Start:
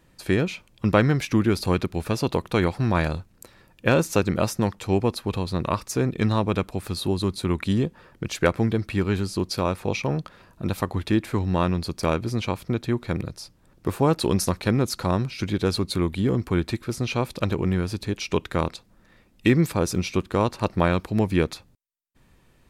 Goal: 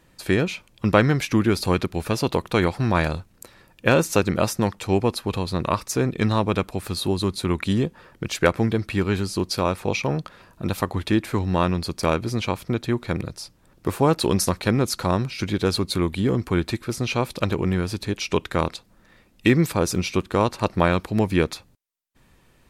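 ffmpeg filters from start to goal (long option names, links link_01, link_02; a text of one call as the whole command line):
ffmpeg -i in.wav -af "lowshelf=frequency=380:gain=-3,volume=3.5dB" -ar 48000 -c:a libmp3lame -b:a 80k out.mp3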